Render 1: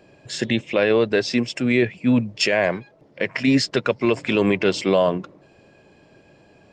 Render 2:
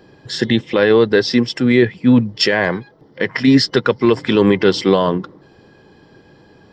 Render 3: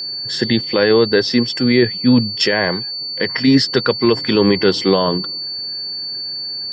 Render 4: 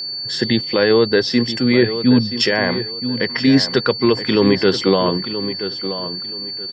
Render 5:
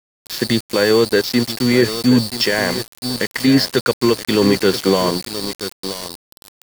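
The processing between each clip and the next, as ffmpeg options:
-af "superequalizer=8b=0.398:12b=0.355:15b=0.355:16b=0.355,volume=6.5dB"
-af "aeval=exprs='val(0)+0.0794*sin(2*PI*4500*n/s)':c=same,volume=-1dB"
-filter_complex "[0:a]asplit=2[a][b];[b]adelay=977,lowpass=f=3.2k:p=1,volume=-10.5dB,asplit=2[c][d];[d]adelay=977,lowpass=f=3.2k:p=1,volume=0.25,asplit=2[e][f];[f]adelay=977,lowpass=f=3.2k:p=1,volume=0.25[g];[a][c][e][g]amix=inputs=4:normalize=0,volume=-1dB"
-af "aeval=exprs='val(0)*gte(abs(val(0)),0.0944)':c=same"

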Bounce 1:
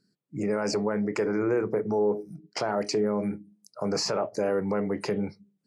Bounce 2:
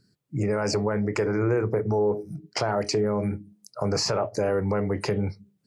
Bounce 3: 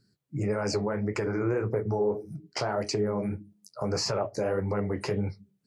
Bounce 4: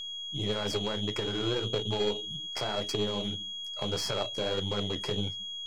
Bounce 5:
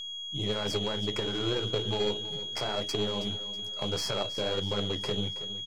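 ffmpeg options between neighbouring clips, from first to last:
-filter_complex "[0:a]lowshelf=f=140:t=q:w=1.5:g=9.5,asplit=2[a][b];[b]acompressor=threshold=-34dB:ratio=6,volume=0dB[c];[a][c]amix=inputs=2:normalize=0"
-af "flanger=delay=7.3:depth=7.9:regen=-39:speed=1.7:shape=triangular"
-af "aeval=exprs='val(0)+0.0316*sin(2*PI*3300*n/s)':c=same,aeval=exprs='0.188*(cos(1*acos(clip(val(0)/0.188,-1,1)))-cos(1*PI/2))+0.0335*(cos(3*acos(clip(val(0)/0.188,-1,1)))-cos(3*PI/2))+0.00841*(cos(6*acos(clip(val(0)/0.188,-1,1)))-cos(6*PI/2))':c=same"
-af "aecho=1:1:323|646|969|1292:0.2|0.0878|0.0386|0.017"

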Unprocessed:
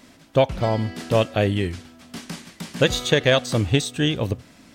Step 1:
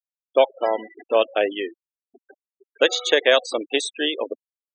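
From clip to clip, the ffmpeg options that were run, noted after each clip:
-af "highpass=f=360:w=0.5412,highpass=f=360:w=1.3066,afftfilt=real='re*gte(hypot(re,im),0.0501)':imag='im*gte(hypot(re,im),0.0501)':win_size=1024:overlap=0.75,volume=2dB"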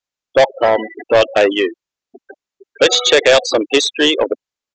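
-af "acontrast=21,aresample=16000,asoftclip=type=tanh:threshold=-13dB,aresample=44100,volume=8dB"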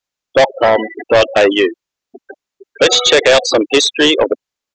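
-af "apsyclip=9dB,volume=-5dB"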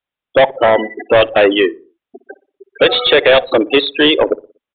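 -filter_complex "[0:a]asplit=2[a][b];[b]adelay=60,lowpass=f=860:p=1,volume=-18dB,asplit=2[c][d];[d]adelay=60,lowpass=f=860:p=1,volume=0.47,asplit=2[e][f];[f]adelay=60,lowpass=f=860:p=1,volume=0.47,asplit=2[g][h];[h]adelay=60,lowpass=f=860:p=1,volume=0.47[i];[a][c][e][g][i]amix=inputs=5:normalize=0,aresample=8000,aresample=44100"

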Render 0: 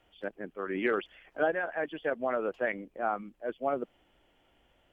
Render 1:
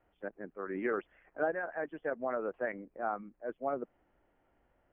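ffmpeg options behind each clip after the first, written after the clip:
-af "lowpass=f=1.9k:w=0.5412,lowpass=f=1.9k:w=1.3066,volume=-4dB"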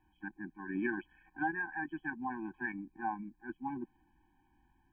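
-af "afftfilt=real='re*eq(mod(floor(b*sr/1024/370),2),0)':imag='im*eq(mod(floor(b*sr/1024/370),2),0)':win_size=1024:overlap=0.75,volume=4dB"

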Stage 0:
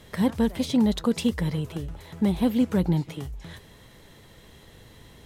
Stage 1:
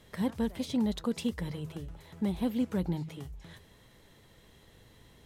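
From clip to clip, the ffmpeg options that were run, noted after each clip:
-af "bandreject=f=79.38:t=h:w=4,bandreject=f=158.76:t=h:w=4,volume=-8dB"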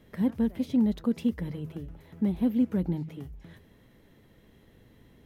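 -af "equalizer=f=250:t=o:w=1:g=6,equalizer=f=1k:t=o:w=1:g=-4,equalizer=f=4k:t=o:w=1:g=-6,equalizer=f=8k:t=o:w=1:g=-10"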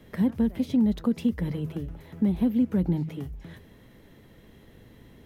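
-filter_complex "[0:a]acrossover=split=170[a][b];[b]acompressor=threshold=-32dB:ratio=2[c];[a][c]amix=inputs=2:normalize=0,volume=5.5dB"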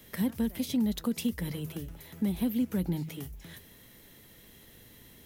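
-af "crystalizer=i=6.5:c=0,volume=-6dB"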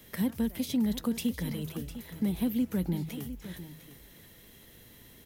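-af "aecho=1:1:704:0.224"

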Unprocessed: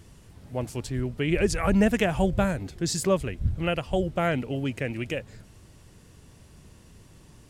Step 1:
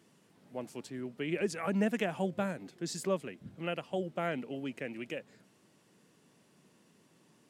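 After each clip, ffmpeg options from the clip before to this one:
-af "highpass=f=180:w=0.5412,highpass=f=180:w=1.3066,bass=f=250:g=1,treble=f=4k:g=-3,volume=-8.5dB"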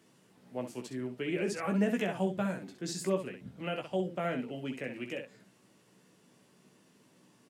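-filter_complex "[0:a]acrossover=split=450[a][b];[b]acompressor=threshold=-38dB:ratio=1.5[c];[a][c]amix=inputs=2:normalize=0,asplit=2[d][e];[e]aecho=0:1:16|65:0.562|0.422[f];[d][f]amix=inputs=2:normalize=0"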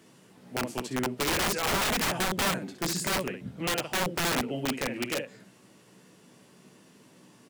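-af "aeval=exprs='(mod(29.9*val(0)+1,2)-1)/29.9':c=same,volume=7.5dB"

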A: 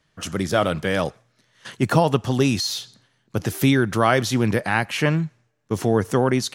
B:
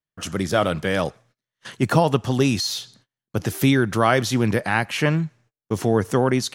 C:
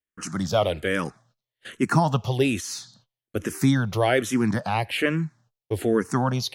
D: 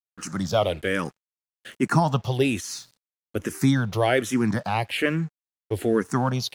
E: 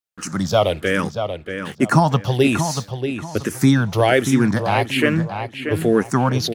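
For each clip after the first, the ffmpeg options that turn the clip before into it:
-af "agate=range=-27dB:threshold=-53dB:ratio=16:detection=peak"
-filter_complex "[0:a]asplit=2[a][b];[b]afreqshift=-1.2[c];[a][c]amix=inputs=2:normalize=1"
-af "aeval=exprs='sgn(val(0))*max(abs(val(0))-0.00316,0)':c=same"
-filter_complex "[0:a]asplit=2[a][b];[b]adelay=634,lowpass=f=3.5k:p=1,volume=-7.5dB,asplit=2[c][d];[d]adelay=634,lowpass=f=3.5k:p=1,volume=0.29,asplit=2[e][f];[f]adelay=634,lowpass=f=3.5k:p=1,volume=0.29,asplit=2[g][h];[h]adelay=634,lowpass=f=3.5k:p=1,volume=0.29[i];[a][c][e][g][i]amix=inputs=5:normalize=0,volume=5.5dB"

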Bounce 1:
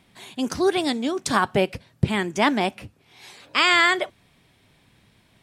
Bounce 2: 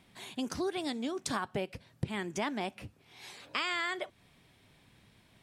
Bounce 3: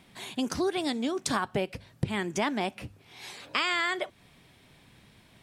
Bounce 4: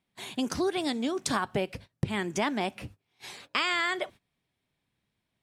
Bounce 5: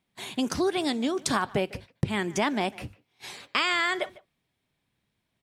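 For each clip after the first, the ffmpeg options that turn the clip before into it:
-af "acompressor=threshold=-30dB:ratio=3,volume=-4dB"
-af "bandreject=f=50:t=h:w=6,bandreject=f=100:t=h:w=6,volume=5.5dB"
-af "agate=range=-23dB:threshold=-45dB:ratio=16:detection=peak"
-filter_complex "[0:a]asplit=2[a][b];[b]adelay=150,highpass=300,lowpass=3.4k,asoftclip=type=hard:threshold=-21.5dB,volume=-20dB[c];[a][c]amix=inputs=2:normalize=0,volume=2.5dB"

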